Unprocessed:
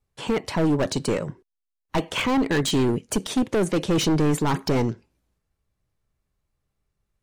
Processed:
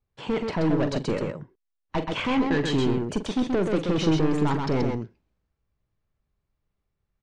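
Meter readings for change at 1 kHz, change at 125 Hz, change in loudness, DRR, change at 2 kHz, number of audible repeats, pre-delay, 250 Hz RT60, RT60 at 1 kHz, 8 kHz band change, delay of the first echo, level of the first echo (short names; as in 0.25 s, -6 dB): -2.0 dB, -1.5 dB, -2.0 dB, none, -2.5 dB, 2, none, none, none, -12.0 dB, 44 ms, -11.0 dB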